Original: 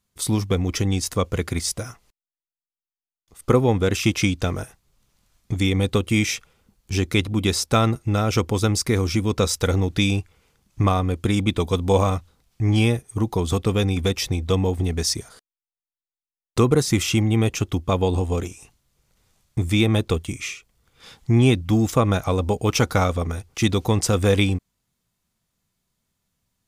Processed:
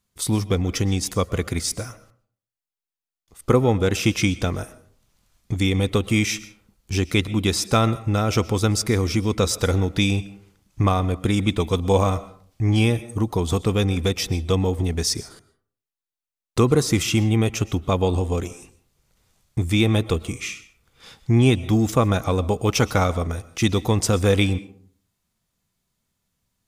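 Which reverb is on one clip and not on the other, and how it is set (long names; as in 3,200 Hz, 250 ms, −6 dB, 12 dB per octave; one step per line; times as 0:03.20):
comb and all-pass reverb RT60 0.52 s, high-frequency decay 0.5×, pre-delay 85 ms, DRR 17 dB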